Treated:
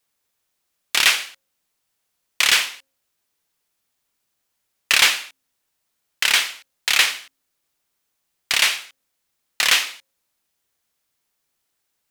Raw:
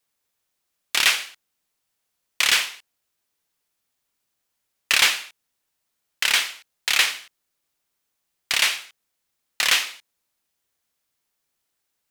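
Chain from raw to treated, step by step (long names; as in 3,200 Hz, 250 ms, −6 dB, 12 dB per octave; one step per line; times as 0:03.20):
hum removal 269.1 Hz, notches 2
level +2.5 dB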